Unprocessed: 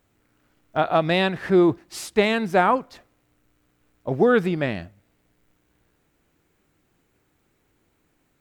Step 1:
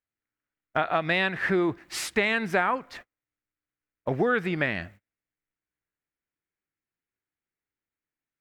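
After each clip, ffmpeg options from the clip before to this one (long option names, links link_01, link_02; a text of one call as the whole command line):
ffmpeg -i in.wav -af "agate=range=-31dB:threshold=-47dB:ratio=16:detection=peak,equalizer=frequency=1900:width=1:gain=11,acompressor=threshold=-24dB:ratio=3" out.wav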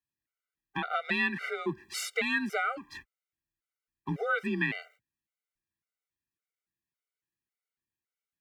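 ffmpeg -i in.wav -af "equalizer=frequency=560:width_type=o:width=1.2:gain=-9.5,afreqshift=31,afftfilt=real='re*gt(sin(2*PI*1.8*pts/sr)*(1-2*mod(floor(b*sr/1024/390),2)),0)':imag='im*gt(sin(2*PI*1.8*pts/sr)*(1-2*mod(floor(b*sr/1024/390),2)),0)':win_size=1024:overlap=0.75" out.wav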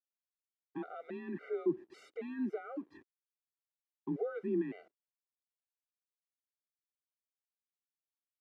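ffmpeg -i in.wav -af "alimiter=level_in=3.5dB:limit=-24dB:level=0:latency=1:release=11,volume=-3.5dB,acrusher=bits=8:mix=0:aa=0.5,bandpass=frequency=340:width_type=q:width=3.3:csg=0,volume=7.5dB" out.wav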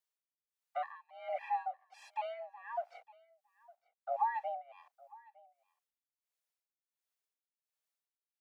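ffmpeg -i in.wav -af "tremolo=f=1.4:d=0.95,afreqshift=400,aecho=1:1:909:0.0708,volume=5dB" out.wav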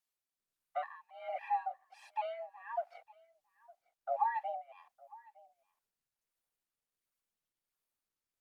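ffmpeg -i in.wav -af "flanger=delay=0.7:depth=2.9:regen=-57:speed=1.5:shape=triangular,volume=4.5dB" -ar 48000 -c:a libopus -b:a 48k out.opus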